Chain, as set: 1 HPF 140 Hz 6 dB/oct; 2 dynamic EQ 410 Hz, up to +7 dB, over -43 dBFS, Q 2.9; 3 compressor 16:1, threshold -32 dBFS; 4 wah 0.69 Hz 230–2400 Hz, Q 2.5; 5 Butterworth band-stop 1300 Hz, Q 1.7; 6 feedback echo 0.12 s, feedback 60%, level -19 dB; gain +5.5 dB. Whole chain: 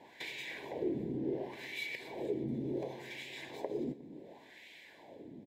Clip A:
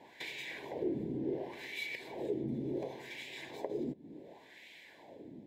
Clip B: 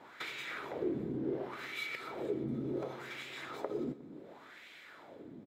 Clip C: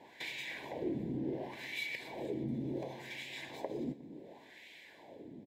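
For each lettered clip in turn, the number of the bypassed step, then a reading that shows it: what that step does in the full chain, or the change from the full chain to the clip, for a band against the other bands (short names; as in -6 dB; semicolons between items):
6, echo-to-direct -17.0 dB to none; 5, 1 kHz band +4.0 dB; 2, momentary loudness spread change -1 LU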